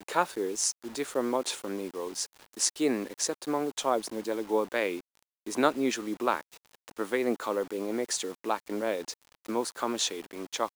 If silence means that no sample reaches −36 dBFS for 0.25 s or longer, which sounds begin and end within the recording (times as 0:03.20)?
0:02.57–0:04.99
0:05.47–0:06.41
0:06.88–0:09.13